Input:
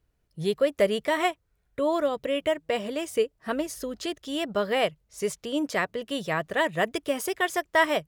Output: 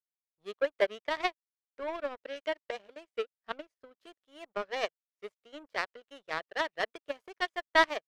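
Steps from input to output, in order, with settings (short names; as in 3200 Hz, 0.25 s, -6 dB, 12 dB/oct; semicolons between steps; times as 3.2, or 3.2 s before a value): three-band isolator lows -19 dB, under 360 Hz, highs -20 dB, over 3400 Hz; power-law curve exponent 2; gain +2.5 dB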